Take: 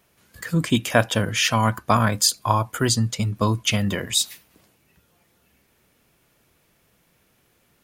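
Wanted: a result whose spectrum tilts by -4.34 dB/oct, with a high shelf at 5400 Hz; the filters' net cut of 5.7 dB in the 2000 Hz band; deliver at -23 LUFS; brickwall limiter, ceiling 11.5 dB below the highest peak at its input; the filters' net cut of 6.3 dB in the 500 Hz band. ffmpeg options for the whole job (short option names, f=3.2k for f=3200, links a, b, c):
-af "equalizer=f=500:t=o:g=-8,equalizer=f=2k:t=o:g=-6.5,highshelf=f=5.4k:g=-6,volume=5.5dB,alimiter=limit=-12.5dB:level=0:latency=1"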